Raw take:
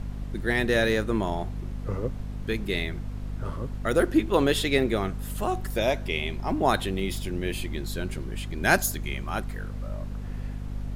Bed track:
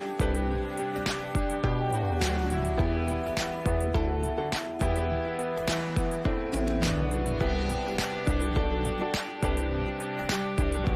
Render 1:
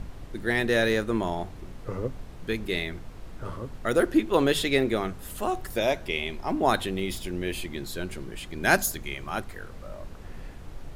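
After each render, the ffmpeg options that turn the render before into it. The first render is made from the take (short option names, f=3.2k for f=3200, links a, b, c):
-af "bandreject=f=50:t=h:w=6,bandreject=f=100:t=h:w=6,bandreject=f=150:t=h:w=6,bandreject=f=200:t=h:w=6,bandreject=f=250:t=h:w=6"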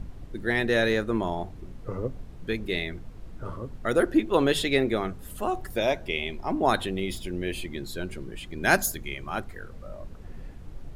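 -af "afftdn=nr=7:nf=-43"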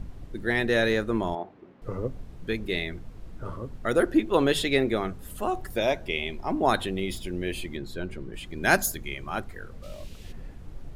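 -filter_complex "[0:a]asettb=1/sr,asplit=3[a][b][c];[a]atrim=end=1.354[d];[b]atrim=start=1.35:end=1.82,asetpts=PTS-STARTPTS,afade=t=in:d=0.004:c=qsin,afade=t=out:st=0.466:d=0.004:c=qsin,highpass=290,lowpass=2.3k[e];[c]atrim=start=1.816[f];[d][e]acrossfade=d=0.004:c1=hsin:c2=qsin[g];[g][f]acrossfade=d=0.004:c1=qsin:c2=hsin,asettb=1/sr,asplit=3[h][i][j];[h]atrim=end=7.774[k];[i]atrim=start=7.77:end=8.34,asetpts=PTS-STARTPTS,afade=t=in:d=0.004:c=qsin,afade=t=out:st=0.566:d=0.004:c=qsin,highshelf=f=4.5k:g=-11[l];[j]atrim=start=8.336[m];[k][l]acrossfade=d=0.004:c1=hsin:c2=qsin[n];[n][m]acrossfade=d=0.004:c1=qsin:c2=hsin,asplit=3[o][p][q];[o]afade=t=out:st=9.82:d=0.02[r];[p]highshelf=f=2k:t=q:w=1.5:g=12.5,afade=t=in:st=9.82:d=0.02,afade=t=out:st=10.31:d=0.02[s];[q]afade=t=in:st=10.31:d=0.02[t];[r][s][t]amix=inputs=3:normalize=0"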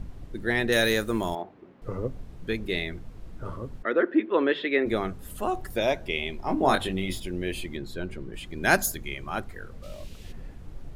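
-filter_complex "[0:a]asettb=1/sr,asplit=3[a][b][c];[a]atrim=end=0.724[d];[b]atrim=start=0.72:end=1.42,asetpts=PTS-STARTPTS,afade=t=in:d=0.004:c=qsin,afade=t=out:st=0.696:d=0.004:c=qsin,aemphasis=mode=production:type=75fm[e];[c]atrim=start=1.416[f];[d][e]acrossfade=d=0.004:c1=hsin:c2=qsin[g];[g][f]acrossfade=d=0.004:c1=qsin:c2=hsin,asplit=3[h][i][j];[h]afade=t=out:st=3.82:d=0.02[k];[i]highpass=f=250:w=0.5412,highpass=f=250:w=1.3066,equalizer=f=750:t=q:w=4:g=-8,equalizer=f=1.8k:t=q:w=4:g=4,equalizer=f=2.8k:t=q:w=4:g=-3,lowpass=f=3k:w=0.5412,lowpass=f=3k:w=1.3066,afade=t=in:st=3.82:d=0.02,afade=t=out:st=4.85:d=0.02[l];[j]afade=t=in:st=4.85:d=0.02[m];[k][l][m]amix=inputs=3:normalize=0,asettb=1/sr,asplit=3[n][o][p];[n]atrim=end=6.434[q];[o]atrim=start=6.43:end=7.2,asetpts=PTS-STARTPTS,afade=t=in:d=0.004:c=qsin,afade=t=out:st=0.766:d=0.004:c=qsin,asplit=2[r][s];[s]adelay=22,volume=-5dB[t];[r][t]amix=inputs=2:normalize=0,atrim=end_sample=33957[u];[p]atrim=start=7.196[v];[q][u]acrossfade=d=0.004:c1=hsin:c2=qsin[w];[w][v]acrossfade=d=0.004:c1=qsin:c2=hsin"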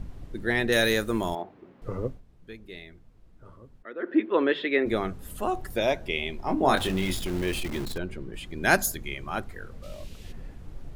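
-filter_complex "[0:a]asettb=1/sr,asplit=3[a][b][c];[a]atrim=end=6.774[d];[b]atrim=start=6.77:end=7.98,asetpts=PTS-STARTPTS,afade=t=in:d=0.004:c=qsin,afade=t=out:st=1.206:d=0.004:c=qsin,aeval=exprs='val(0)+0.5*0.0251*sgn(val(0))':c=same[e];[c]atrim=start=7.976[f];[d][e]acrossfade=d=0.004:c1=hsin:c2=qsin[g];[g][f]acrossfade=d=0.004:c1=qsin:c2=hsin,asplit=3[h][i][j];[h]atrim=end=2.21,asetpts=PTS-STARTPTS,afade=t=out:st=2.06:d=0.15:silence=0.199526[k];[i]atrim=start=2.21:end=3.99,asetpts=PTS-STARTPTS,volume=-14dB[l];[j]atrim=start=3.99,asetpts=PTS-STARTPTS,afade=t=in:d=0.15:silence=0.199526[m];[k][l][m]concat=n=3:v=0:a=1"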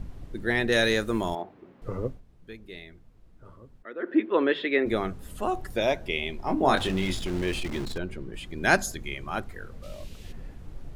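-filter_complex "[0:a]acrossover=split=9000[a][b];[b]acompressor=threshold=-55dB:ratio=4:attack=1:release=60[c];[a][c]amix=inputs=2:normalize=0"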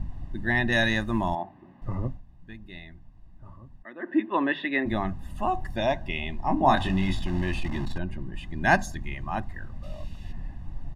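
-af "lowpass=f=2.1k:p=1,aecho=1:1:1.1:0.89"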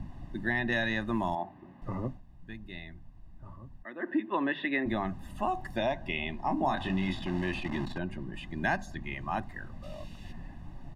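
-filter_complex "[0:a]acrossover=split=140|4300[a][b][c];[a]acompressor=threshold=-42dB:ratio=4[d];[b]acompressor=threshold=-27dB:ratio=4[e];[c]acompressor=threshold=-59dB:ratio=4[f];[d][e][f]amix=inputs=3:normalize=0"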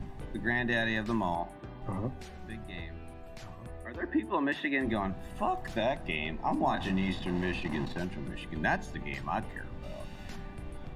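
-filter_complex "[1:a]volume=-19.5dB[a];[0:a][a]amix=inputs=2:normalize=0"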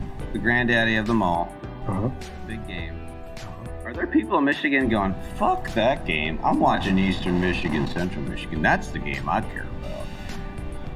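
-af "volume=9.5dB"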